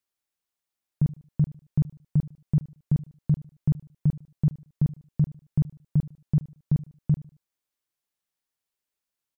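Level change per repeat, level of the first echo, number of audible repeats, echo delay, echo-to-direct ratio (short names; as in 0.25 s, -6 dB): -9.5 dB, -19.0 dB, 2, 75 ms, -18.5 dB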